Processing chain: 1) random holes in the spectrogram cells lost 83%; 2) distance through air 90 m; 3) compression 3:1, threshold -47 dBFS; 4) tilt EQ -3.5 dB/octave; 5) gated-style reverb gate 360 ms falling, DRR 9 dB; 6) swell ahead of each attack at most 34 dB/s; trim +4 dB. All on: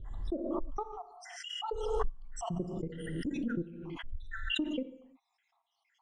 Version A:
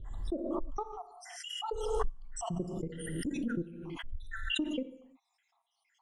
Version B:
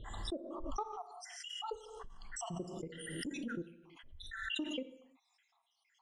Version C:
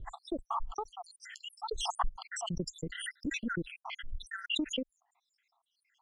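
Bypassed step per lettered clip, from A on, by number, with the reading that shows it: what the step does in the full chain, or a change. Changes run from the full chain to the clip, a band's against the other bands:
2, 8 kHz band +5.0 dB; 4, 8 kHz band +8.0 dB; 5, crest factor change +2.5 dB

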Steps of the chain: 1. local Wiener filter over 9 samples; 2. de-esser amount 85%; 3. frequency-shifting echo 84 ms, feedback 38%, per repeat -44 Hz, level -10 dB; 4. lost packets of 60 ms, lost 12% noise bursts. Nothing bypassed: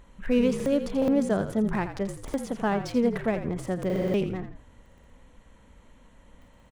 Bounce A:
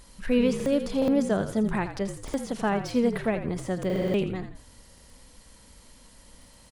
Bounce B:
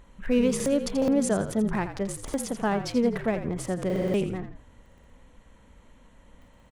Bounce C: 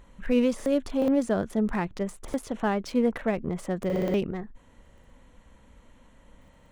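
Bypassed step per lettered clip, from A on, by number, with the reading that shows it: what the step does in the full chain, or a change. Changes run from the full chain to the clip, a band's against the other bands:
1, 4 kHz band +3.0 dB; 2, 8 kHz band +10.0 dB; 3, momentary loudness spread change +1 LU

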